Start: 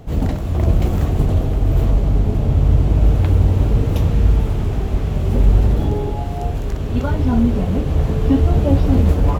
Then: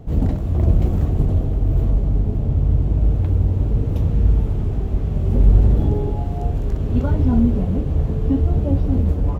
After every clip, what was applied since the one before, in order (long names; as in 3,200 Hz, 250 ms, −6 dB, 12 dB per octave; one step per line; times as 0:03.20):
tilt shelving filter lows +5.5 dB, about 720 Hz
speech leveller 2 s
level −7.5 dB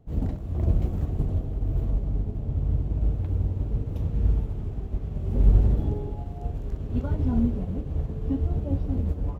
expander for the loud parts 1.5 to 1, over −34 dBFS
level −4.5 dB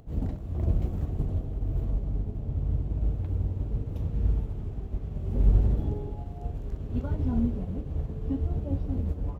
upward compression, threshold −42 dBFS
level −3 dB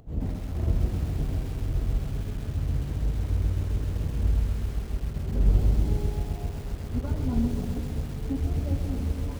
feedback echo at a low word length 131 ms, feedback 80%, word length 7 bits, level −7.5 dB